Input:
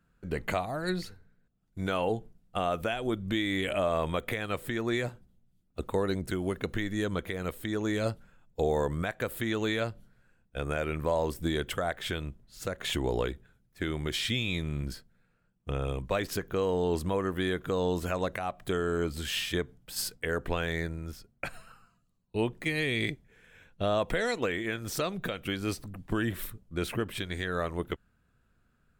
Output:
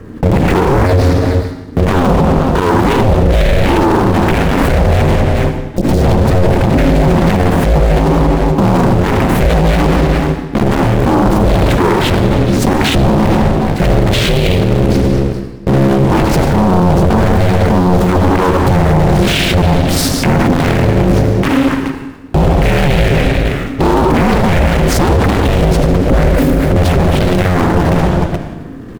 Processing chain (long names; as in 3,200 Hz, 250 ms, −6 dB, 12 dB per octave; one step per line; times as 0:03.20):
one scale factor per block 3 bits
high-shelf EQ 2,800 Hz −10 dB
comb and all-pass reverb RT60 1.1 s, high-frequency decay 0.95×, pre-delay 30 ms, DRR 7 dB
0:05.74–0:06.07: healed spectral selection 290–3,700 Hz both
0:06.66–0:07.28: comb filter 2.3 ms, depth 84%
ring modulation 270 Hz
low-shelf EQ 360 Hz +11.5 dB
on a send: single-tap delay 424 ms −22 dB
on the sum: boost into a limiter +35.5 dB
highs frequency-modulated by the lows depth 0.59 ms
level −1 dB